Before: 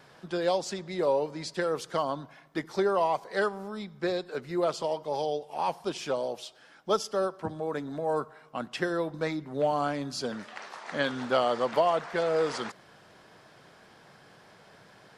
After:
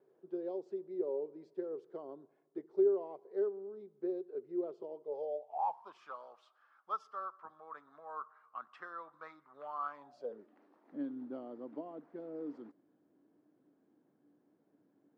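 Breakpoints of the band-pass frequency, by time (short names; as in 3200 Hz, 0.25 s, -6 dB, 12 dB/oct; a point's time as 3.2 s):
band-pass, Q 8.4
4.99 s 390 Hz
6.02 s 1200 Hz
9.9 s 1200 Hz
10.53 s 290 Hz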